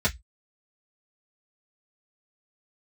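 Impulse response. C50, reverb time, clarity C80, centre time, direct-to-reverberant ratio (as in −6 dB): 22.5 dB, 0.10 s, 35.5 dB, 9 ms, −7.5 dB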